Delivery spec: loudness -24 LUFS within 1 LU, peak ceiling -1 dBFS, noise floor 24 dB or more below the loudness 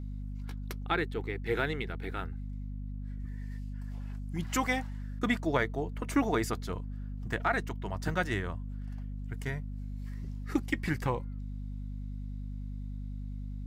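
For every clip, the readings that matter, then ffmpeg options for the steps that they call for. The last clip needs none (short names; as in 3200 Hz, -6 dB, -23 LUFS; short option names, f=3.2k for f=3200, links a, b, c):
hum 50 Hz; harmonics up to 250 Hz; hum level -36 dBFS; loudness -35.0 LUFS; peak -14.0 dBFS; loudness target -24.0 LUFS
-> -af "bandreject=f=50:t=h:w=6,bandreject=f=100:t=h:w=6,bandreject=f=150:t=h:w=6,bandreject=f=200:t=h:w=6,bandreject=f=250:t=h:w=6"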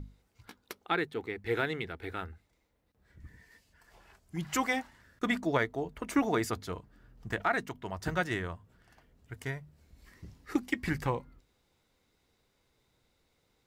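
hum none; loudness -34.0 LUFS; peak -15.0 dBFS; loudness target -24.0 LUFS
-> -af "volume=10dB"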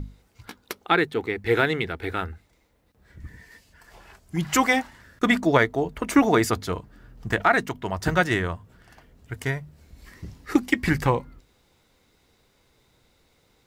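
loudness -24.0 LUFS; peak -5.0 dBFS; noise floor -64 dBFS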